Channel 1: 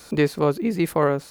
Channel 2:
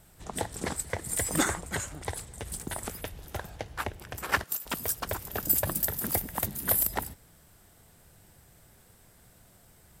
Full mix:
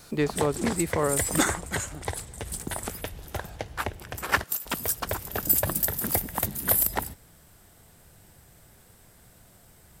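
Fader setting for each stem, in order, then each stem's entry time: -6.0 dB, +3.0 dB; 0.00 s, 0.00 s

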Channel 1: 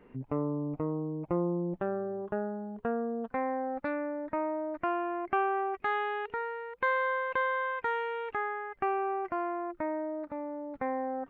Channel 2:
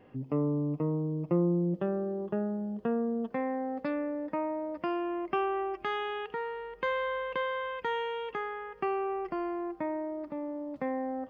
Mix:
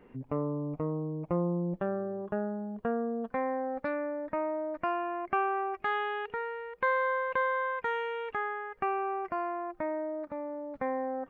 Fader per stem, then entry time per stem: 0.0 dB, -13.0 dB; 0.00 s, 0.00 s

